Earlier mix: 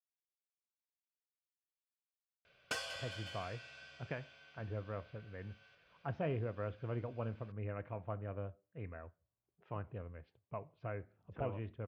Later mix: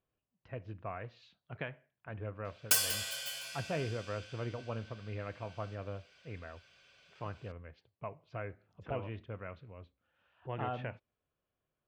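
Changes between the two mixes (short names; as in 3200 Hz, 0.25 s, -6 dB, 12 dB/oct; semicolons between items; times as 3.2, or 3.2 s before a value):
speech: entry -2.50 s; master: remove tape spacing loss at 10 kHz 25 dB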